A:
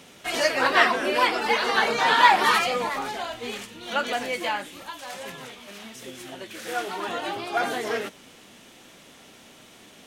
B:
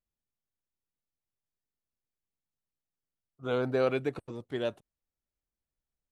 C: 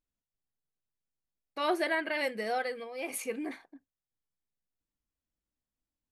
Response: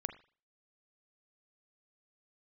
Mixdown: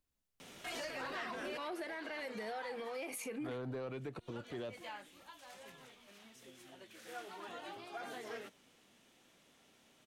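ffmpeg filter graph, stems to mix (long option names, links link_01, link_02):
-filter_complex "[0:a]adelay=400,volume=-5dB,afade=type=out:start_time=2.27:duration=0.69:silence=0.237137[link_01];[1:a]volume=-1dB[link_02];[2:a]acompressor=threshold=-34dB:ratio=6,volume=2.5dB,asplit=2[link_03][link_04];[link_04]apad=whole_len=461413[link_05];[link_01][link_05]sidechaincompress=threshold=-50dB:ratio=8:attack=47:release=1410[link_06];[link_06][link_02][link_03]amix=inputs=3:normalize=0,acrossover=split=200[link_07][link_08];[link_08]acompressor=threshold=-31dB:ratio=6[link_09];[link_07][link_09]amix=inputs=2:normalize=0,asoftclip=type=tanh:threshold=-27dB,alimiter=level_in=11.5dB:limit=-24dB:level=0:latency=1:release=88,volume=-11.5dB"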